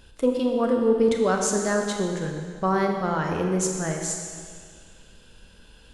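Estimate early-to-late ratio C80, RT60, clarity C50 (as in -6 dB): 4.5 dB, 2.0 s, 3.5 dB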